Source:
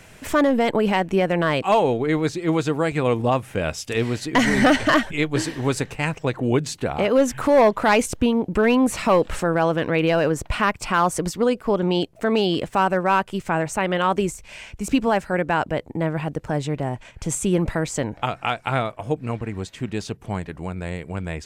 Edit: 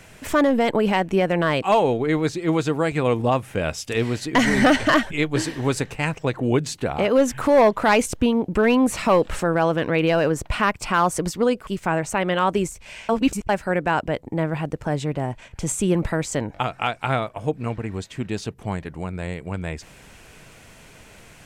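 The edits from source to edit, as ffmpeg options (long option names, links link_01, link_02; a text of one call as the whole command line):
ffmpeg -i in.wav -filter_complex "[0:a]asplit=4[link_01][link_02][link_03][link_04];[link_01]atrim=end=11.672[link_05];[link_02]atrim=start=13.298:end=14.722[link_06];[link_03]atrim=start=14.718:end=15.122,asetpts=PTS-STARTPTS,areverse[link_07];[link_04]atrim=start=15.118[link_08];[link_05][link_06]acrossfade=duration=0.004:curve1=hsin:curve2=hsin[link_09];[link_09][link_07]acrossfade=duration=0.004:curve1=hsin:curve2=hsin[link_10];[link_10][link_08]acrossfade=duration=0.004:curve1=hsin:curve2=hsin" out.wav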